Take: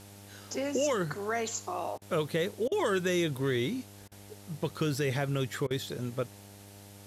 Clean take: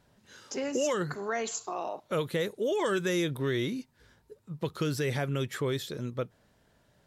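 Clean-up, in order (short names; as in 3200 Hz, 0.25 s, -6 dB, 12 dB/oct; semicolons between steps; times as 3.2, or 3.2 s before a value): de-hum 100.3 Hz, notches 9; interpolate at 1.98/2.68/4.08/5.67, 35 ms; noise print and reduce 16 dB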